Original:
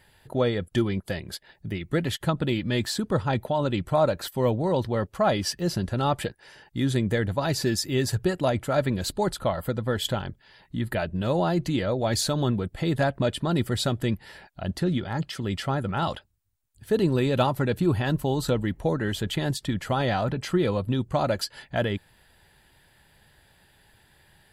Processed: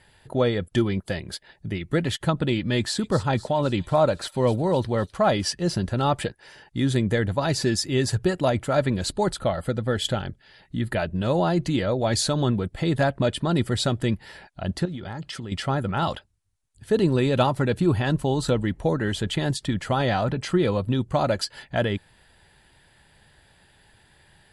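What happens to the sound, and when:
2.73–5.43 thin delay 0.254 s, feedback 54%, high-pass 3800 Hz, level -11 dB
9.4–10.89 bell 1000 Hz -9 dB 0.21 oct
14.85–15.52 compressor 10:1, threshold -31 dBFS
whole clip: steep low-pass 11000 Hz 72 dB/oct; gain +2 dB

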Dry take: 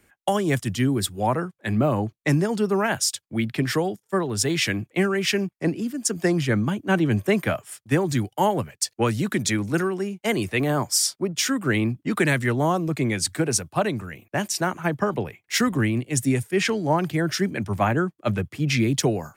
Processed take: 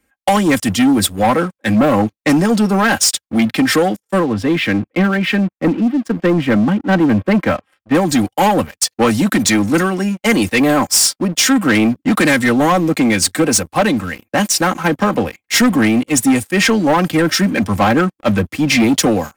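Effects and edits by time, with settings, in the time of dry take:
4.2–7.95 air absorption 450 m
whole clip: comb 3.8 ms, depth 74%; sample leveller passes 3

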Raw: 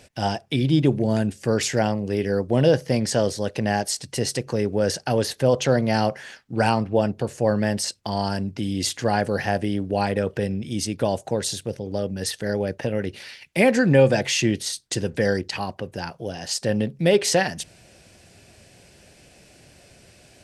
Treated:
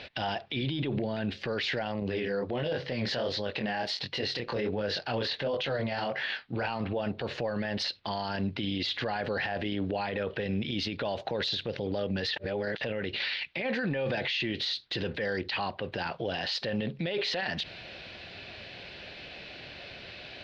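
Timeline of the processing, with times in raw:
2–6.68 chorus 1.4 Hz, delay 19.5 ms, depth 6.4 ms
12.36–12.81 reverse
whole clip: EQ curve 150 Hz 0 dB, 4000 Hz +14 dB, 8300 Hz -30 dB; limiter -23 dBFS

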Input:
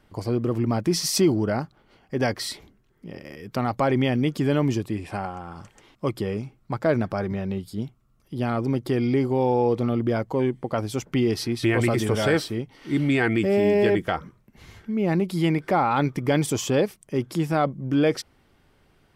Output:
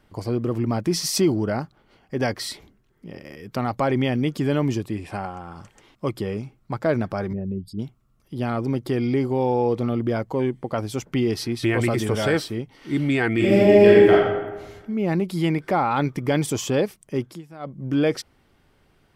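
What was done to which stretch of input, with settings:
7.33–7.79 formant sharpening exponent 2
13.35–14.13 reverb throw, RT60 1.2 s, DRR -5.5 dB
17.18–17.83 dip -19 dB, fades 0.24 s

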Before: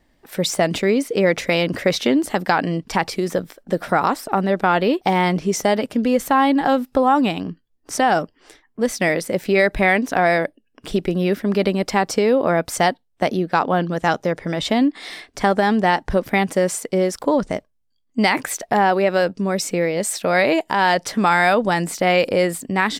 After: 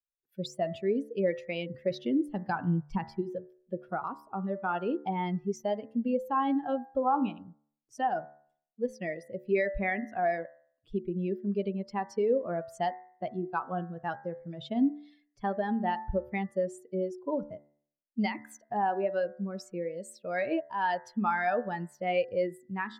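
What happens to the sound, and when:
2.28–3.22 low shelf 180 Hz +9.5 dB
whole clip: per-bin expansion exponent 2; LPF 1300 Hz 6 dB/oct; de-hum 73.36 Hz, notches 28; gain -6 dB

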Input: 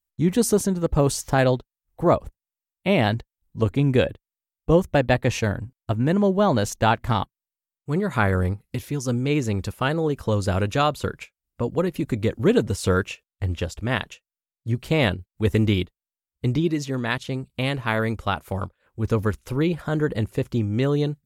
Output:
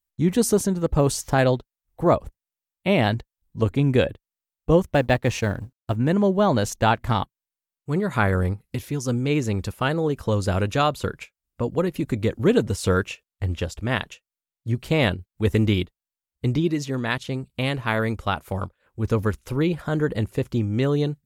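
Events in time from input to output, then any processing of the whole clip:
4.82–5.96 G.711 law mismatch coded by A

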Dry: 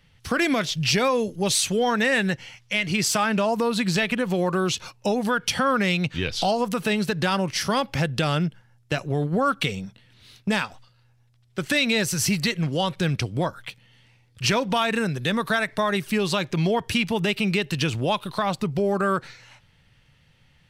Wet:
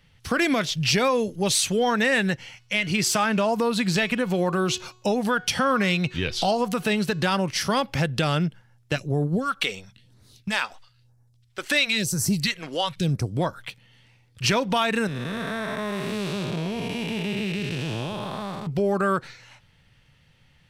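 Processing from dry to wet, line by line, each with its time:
2.39–7.24 de-hum 367.4 Hz, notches 21
8.96–13.37 phaser stages 2, 1 Hz, lowest notch 120–2900 Hz
15.07–18.67 time blur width 0.395 s

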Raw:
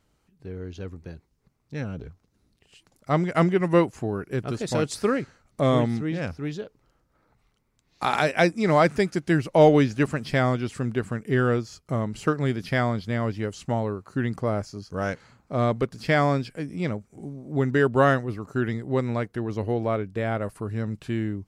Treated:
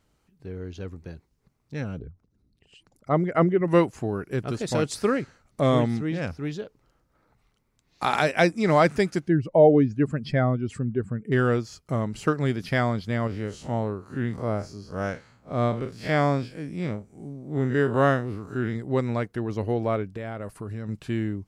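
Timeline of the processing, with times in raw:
1.99–3.68 formant sharpening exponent 1.5
9.27–11.32 spectral contrast raised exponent 1.6
13.27–18.76 time blur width 87 ms
20.05–20.89 compressor, threshold -30 dBFS

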